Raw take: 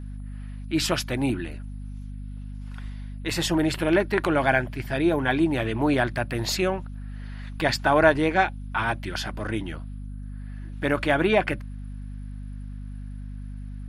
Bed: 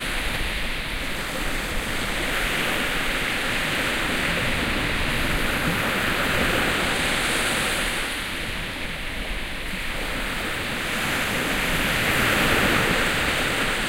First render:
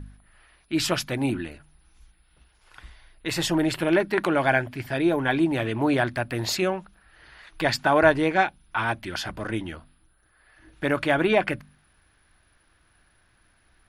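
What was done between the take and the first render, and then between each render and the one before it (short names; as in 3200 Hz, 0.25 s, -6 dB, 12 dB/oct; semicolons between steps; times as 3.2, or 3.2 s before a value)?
de-hum 50 Hz, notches 5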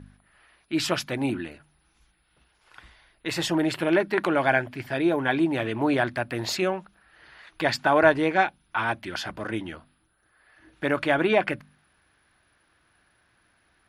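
HPF 150 Hz 6 dB/oct; high shelf 6600 Hz -6 dB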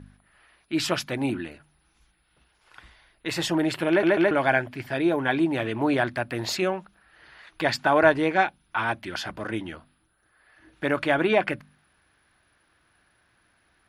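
3.89 stutter in place 0.14 s, 3 plays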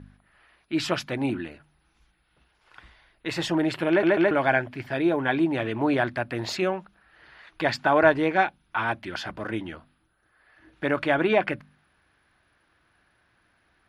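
high shelf 7400 Hz -11.5 dB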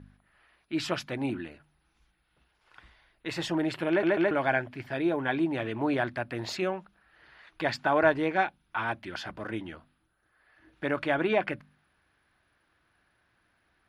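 gain -4.5 dB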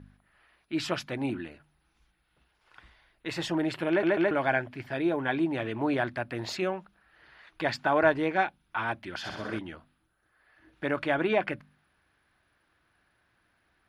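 9.16–9.59 flutter echo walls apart 11 m, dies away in 1 s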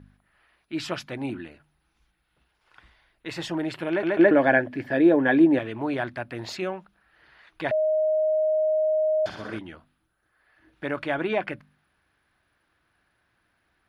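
4.19–5.59 small resonant body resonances 290/500/1700 Hz, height 12 dB, ringing for 20 ms; 7.71–9.26 bleep 623 Hz -19.5 dBFS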